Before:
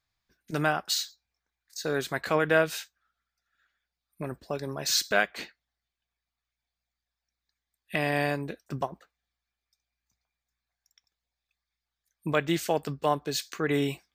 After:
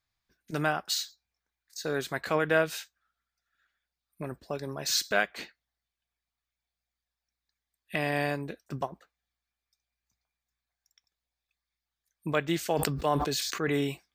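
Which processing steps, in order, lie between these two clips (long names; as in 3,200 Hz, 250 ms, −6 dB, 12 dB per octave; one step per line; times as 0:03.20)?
0:12.57–0:13.81: level that may fall only so fast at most 28 dB per second
level −2 dB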